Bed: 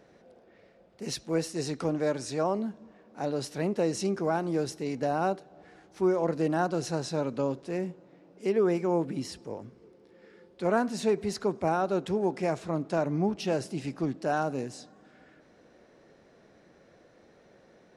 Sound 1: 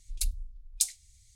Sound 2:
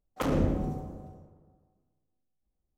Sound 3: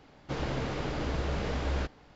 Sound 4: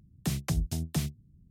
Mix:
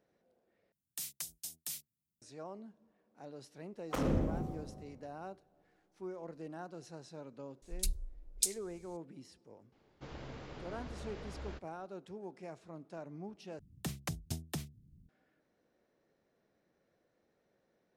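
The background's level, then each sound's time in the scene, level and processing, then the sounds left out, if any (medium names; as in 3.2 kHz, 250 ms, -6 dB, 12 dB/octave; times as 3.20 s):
bed -18.5 dB
0.72 s: replace with 4 -1.5 dB + differentiator
3.73 s: add 2 -5.5 dB
7.62 s: add 1 -4 dB
9.72 s: add 3 -14.5 dB
13.59 s: replace with 4 -2.5 dB + endings held to a fixed fall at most 140 dB/s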